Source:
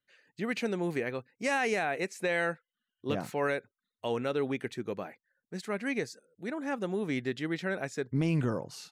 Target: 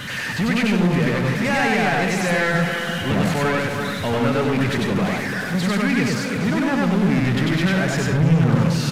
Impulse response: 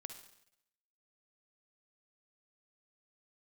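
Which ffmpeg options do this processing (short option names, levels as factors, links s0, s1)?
-filter_complex "[0:a]aeval=exprs='val(0)+0.5*0.0188*sgn(val(0))':c=same,lowshelf=f=260:t=q:w=1.5:g=13.5,aecho=1:1:342|684|1026|1368|1710|2052:0.299|0.155|0.0807|0.042|0.0218|0.0114,asplit=2[s0][s1];[s1]highpass=f=720:p=1,volume=25.1,asoftclip=type=tanh:threshold=0.562[s2];[s0][s2]amix=inputs=2:normalize=0,lowpass=f=2300:p=1,volume=0.501,asplit=2[s3][s4];[1:a]atrim=start_sample=2205,afade=t=out:st=0.16:d=0.01,atrim=end_sample=7497,adelay=96[s5];[s4][s5]afir=irnorm=-1:irlink=0,volume=1.78[s6];[s3][s6]amix=inputs=2:normalize=0,aresample=32000,aresample=44100,volume=0.447"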